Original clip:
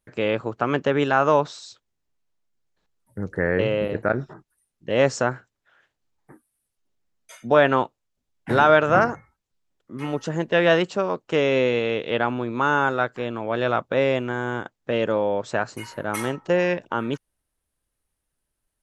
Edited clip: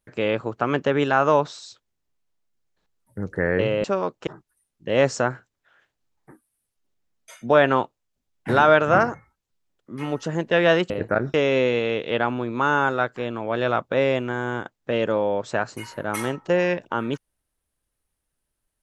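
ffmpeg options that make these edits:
-filter_complex "[0:a]asplit=5[s0][s1][s2][s3][s4];[s0]atrim=end=3.842[s5];[s1]atrim=start=10.908:end=11.342[s6];[s2]atrim=start=4.278:end=10.912[s7];[s3]atrim=start=3.838:end=4.282[s8];[s4]atrim=start=11.338[s9];[s5][s6]acrossfade=d=0.004:c1=hsin:c2=hsin[s10];[s10][s7]acrossfade=d=0.004:c1=hsin:c2=hsin[s11];[s11][s8]acrossfade=d=0.004:c1=hsin:c2=hsin[s12];[s12][s9]acrossfade=d=0.004:c1=hsin:c2=hsin"

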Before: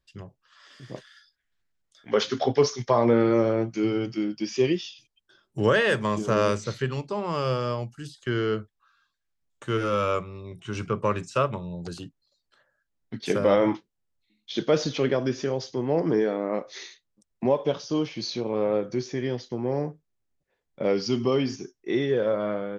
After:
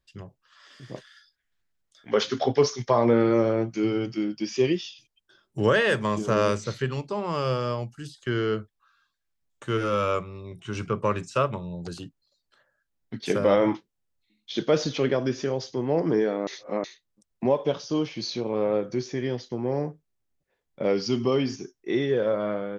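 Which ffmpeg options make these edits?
-filter_complex "[0:a]asplit=3[s0][s1][s2];[s0]atrim=end=16.472[s3];[s1]atrim=start=16.468:end=16.842,asetpts=PTS-STARTPTS,areverse[s4];[s2]atrim=start=16.838[s5];[s3][s4]acrossfade=d=0.004:c1=hsin:c2=hsin[s6];[s6][s5]acrossfade=d=0.004:c1=hsin:c2=hsin"

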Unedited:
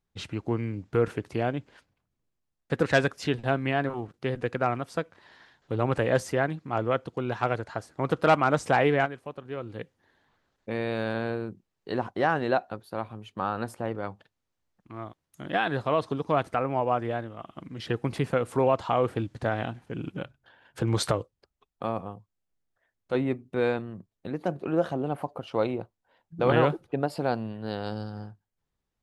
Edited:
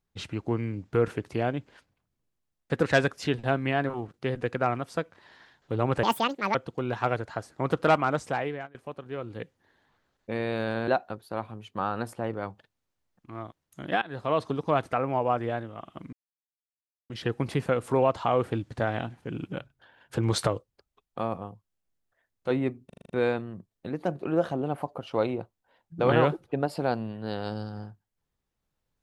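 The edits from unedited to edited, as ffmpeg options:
-filter_complex "[0:a]asplit=13[s0][s1][s2][s3][s4][s5][s6][s7][s8][s9][s10][s11][s12];[s0]atrim=end=6.034[s13];[s1]atrim=start=6.03:end=6.94,asetpts=PTS-STARTPTS,asetrate=77616,aresample=44100[s14];[s2]atrim=start=6.936:end=9.14,asetpts=PTS-STARTPTS,afade=t=out:st=1.254:d=0.95:silence=0.0707946[s15];[s3]atrim=start=9.14:end=11.272,asetpts=PTS-STARTPTS,afade=t=in:d=0.004:c=hsin:silence=0.0707946[s16];[s4]atrim=start=12.488:end=15.63,asetpts=PTS-STARTPTS,afade=t=out:st=3.138:d=0.004:c=hsin:silence=0.0707946[s17];[s5]atrim=start=15.63:end=17.74,asetpts=PTS-STARTPTS,afade=t=in:d=0.34:silence=0.0707946,afade=t=out:st=2.106:d=0.004:c=hsin,apad=pad_dur=0.97[s18];[s6]atrim=start=17.74:end=23.542,asetpts=PTS-STARTPTS,afade=t=in:d=0.004:c=hsin[s19];[s7]atrim=start=23.498:end=23.542[s20];[s8]atrim=start=23.498:end=23.542[s21];[s9]atrim=start=23.498:end=23.542[s22];[s10]atrim=start=23.498:end=23.542[s23];[s11]atrim=start=23.498:end=23.542[s24];[s12]atrim=start=23.498[s25];[s13][s14]acrossfade=d=0.004:c1=hsin:c2=hsin[s26];[s15][s16]concat=n=2:v=0:a=1[s27];[s26][s27]acrossfade=d=0.004:c1=hsin:c2=hsin[s28];[s17][s18][s19]concat=n=3:v=0:a=1[s29];[s28][s29]acrossfade=d=0.004:c1=hsin:c2=hsin[s30];[s30][s20]acrossfade=d=0.004:c1=hsin:c2=hsin[s31];[s31][s21]acrossfade=d=0.004:c1=hsin:c2=hsin[s32];[s32][s22]acrossfade=d=0.004:c1=hsin:c2=hsin[s33];[s33][s23]acrossfade=d=0.004:c1=hsin:c2=hsin[s34];[s34][s24]acrossfade=d=0.004:c1=hsin:c2=hsin[s35];[s35][s25]acrossfade=d=0.004:c1=hsin:c2=hsin"

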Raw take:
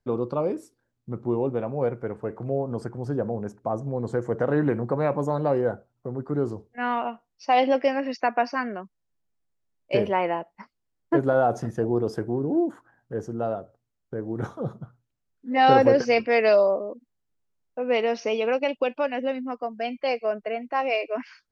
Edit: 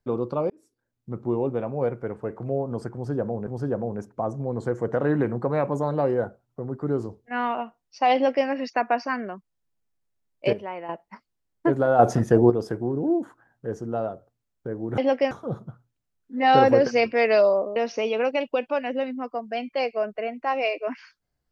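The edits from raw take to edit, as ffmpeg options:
-filter_complex "[0:a]asplit=10[s0][s1][s2][s3][s4][s5][s6][s7][s8][s9];[s0]atrim=end=0.5,asetpts=PTS-STARTPTS,afade=t=out:st=0.496:d=0.004:c=hsin[s10];[s1]atrim=start=0.5:end=3.472,asetpts=PTS-STARTPTS,afade=t=in:d=0.66[s11];[s2]atrim=start=2.938:end=10.002[s12];[s3]atrim=start=9.998:end=10.362,asetpts=PTS-STARTPTS,volume=0.299[s13];[s4]atrim=start=10.358:end=11.462[s14];[s5]atrim=start=11.458:end=11.972,asetpts=PTS-STARTPTS,volume=2.51[s15];[s6]atrim=start=11.968:end=14.452[s16];[s7]atrim=start=7.608:end=7.942[s17];[s8]atrim=start=14.448:end=16.902[s18];[s9]atrim=start=18.038[s19];[s10][s11]concat=n=2:v=0:a=1[s20];[s20][s12]acrossfade=d=0.004:c1=hsin:c2=hsin[s21];[s21][s13]acrossfade=d=0.004:c1=hsin:c2=hsin[s22];[s22][s14]acrossfade=d=0.004:c1=hsin:c2=hsin[s23];[s23][s15]acrossfade=d=0.004:c1=hsin:c2=hsin[s24];[s24][s16]acrossfade=d=0.004:c1=hsin:c2=hsin[s25];[s25][s17]acrossfade=d=0.004:c1=hsin:c2=hsin[s26];[s26][s18]acrossfade=d=0.004:c1=hsin:c2=hsin[s27];[s27][s19]acrossfade=d=0.004:c1=hsin:c2=hsin"

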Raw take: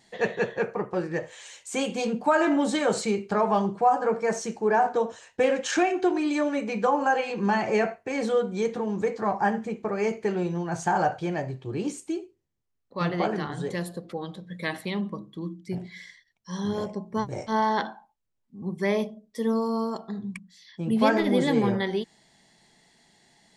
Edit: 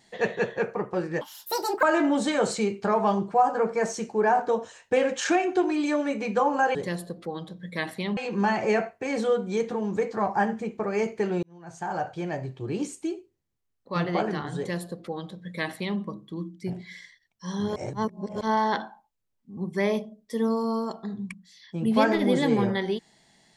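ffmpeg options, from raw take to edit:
-filter_complex "[0:a]asplit=8[s0][s1][s2][s3][s4][s5][s6][s7];[s0]atrim=end=1.214[s8];[s1]atrim=start=1.21:end=2.3,asetpts=PTS-STARTPTS,asetrate=77616,aresample=44100[s9];[s2]atrim=start=2.296:end=7.222[s10];[s3]atrim=start=13.618:end=15.042[s11];[s4]atrim=start=7.218:end=10.48,asetpts=PTS-STARTPTS,afade=t=out:st=3.258:d=0.004:c=hsin[s12];[s5]atrim=start=10.48:end=16.812,asetpts=PTS-STARTPTS,afade=t=in:d=1.09[s13];[s6]atrim=start=16.808:end=17.462,asetpts=PTS-STARTPTS,areverse[s14];[s7]atrim=start=17.458[s15];[s8][s9]acrossfade=d=0.004:c1=hsin:c2=hsin[s16];[s16][s10]acrossfade=d=0.004:c1=hsin:c2=hsin[s17];[s17][s11]acrossfade=d=0.004:c1=hsin:c2=hsin[s18];[s12][s13]concat=n=2:v=0:a=1[s19];[s18][s19]acrossfade=d=0.004:c1=hsin:c2=hsin[s20];[s20][s14]acrossfade=d=0.004:c1=hsin:c2=hsin[s21];[s21][s15]acrossfade=d=0.004:c1=hsin:c2=hsin"

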